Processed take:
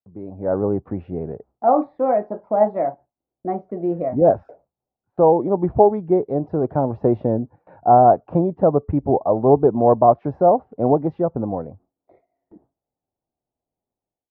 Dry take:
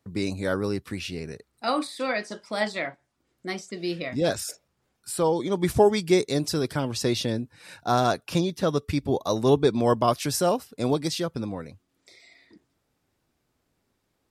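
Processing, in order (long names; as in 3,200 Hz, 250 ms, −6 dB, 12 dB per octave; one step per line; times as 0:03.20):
transistor ladder low-pass 860 Hz, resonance 55%
noise gate with hold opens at −56 dBFS
automatic gain control gain up to 16 dB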